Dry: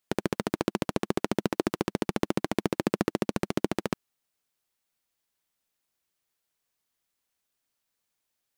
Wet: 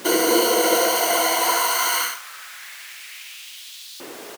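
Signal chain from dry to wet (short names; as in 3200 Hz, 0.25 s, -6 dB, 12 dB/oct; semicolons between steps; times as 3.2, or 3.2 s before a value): spectral trails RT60 0.89 s; RIAA curve recording; in parallel at 0 dB: compressor, threshold -41 dBFS, peak gain reduction 19 dB; on the sum: hum 60 Hz, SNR 20 dB; chorus 0.26 Hz, delay 16 ms, depth 3.2 ms; plain phase-vocoder stretch 0.51×; sample gate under -37 dBFS; ripple EQ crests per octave 1.9, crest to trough 16 dB; added noise pink -46 dBFS; on a send: echo 71 ms -6 dB; on the sum: LFO high-pass saw up 0.25 Hz 330–4000 Hz; gain +8 dB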